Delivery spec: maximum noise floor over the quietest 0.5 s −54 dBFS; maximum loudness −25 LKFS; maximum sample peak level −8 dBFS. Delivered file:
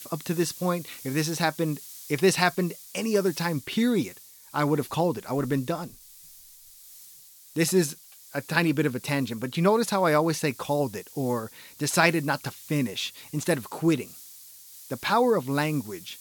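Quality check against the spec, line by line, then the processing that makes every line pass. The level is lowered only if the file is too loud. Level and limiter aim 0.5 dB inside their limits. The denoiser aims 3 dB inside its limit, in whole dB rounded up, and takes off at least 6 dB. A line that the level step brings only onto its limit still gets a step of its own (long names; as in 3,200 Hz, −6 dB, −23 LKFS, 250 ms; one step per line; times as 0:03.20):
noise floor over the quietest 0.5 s −51 dBFS: out of spec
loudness −26.5 LKFS: in spec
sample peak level −5.5 dBFS: out of spec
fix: broadband denoise 6 dB, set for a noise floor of −51 dBFS
brickwall limiter −8.5 dBFS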